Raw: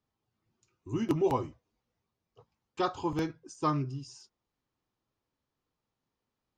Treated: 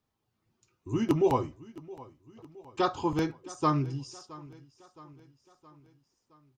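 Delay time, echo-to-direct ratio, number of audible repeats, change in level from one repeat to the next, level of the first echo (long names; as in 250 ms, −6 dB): 668 ms, −18.5 dB, 3, −5.5 dB, −20.0 dB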